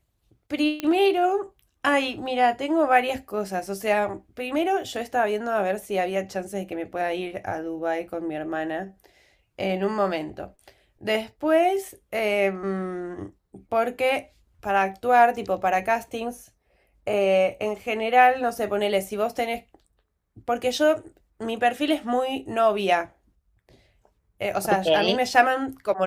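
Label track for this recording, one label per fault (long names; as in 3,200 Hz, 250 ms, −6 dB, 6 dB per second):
0.800000	0.800000	click −13 dBFS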